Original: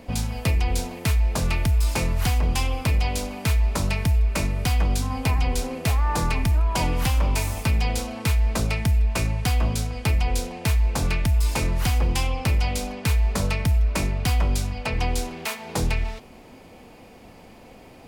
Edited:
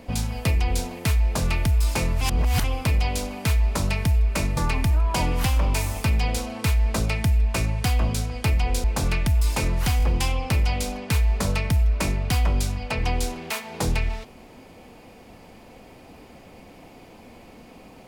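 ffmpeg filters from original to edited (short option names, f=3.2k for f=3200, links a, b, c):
-filter_complex "[0:a]asplit=7[a][b][c][d][e][f][g];[a]atrim=end=2.212[h];[b]atrim=start=2.208:end=2.642,asetpts=PTS-STARTPTS,areverse[i];[c]atrim=start=2.638:end=4.572[j];[d]atrim=start=6.178:end=10.452[k];[e]atrim=start=10.828:end=11.992[l];[f]atrim=start=11.968:end=11.992[m];[g]atrim=start=11.968[n];[h][i]acrossfade=d=0.004:c1=hsin:c2=hsin[o];[o][j]acrossfade=d=0.004:c1=hsin:c2=hsin[p];[p][k]acrossfade=d=0.004:c1=hsin:c2=hsin[q];[q][l]acrossfade=d=0.004:c1=hsin:c2=hsin[r];[r][m]acrossfade=d=0.004:c1=hsin:c2=hsin[s];[s][n]acrossfade=d=0.004:c1=hsin:c2=hsin"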